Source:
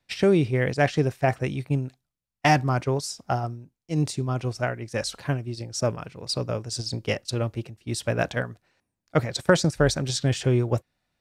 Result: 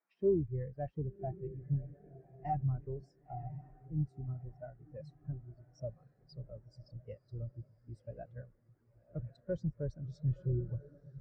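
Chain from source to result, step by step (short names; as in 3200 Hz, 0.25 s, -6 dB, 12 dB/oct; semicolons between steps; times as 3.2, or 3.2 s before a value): octaver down 2 oct, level -6 dB; band noise 160–2100 Hz -41 dBFS; diffused feedback echo 1.035 s, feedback 55%, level -8 dB; soft clip -18 dBFS, distortion -12 dB; spectral expander 2.5:1; gain -3 dB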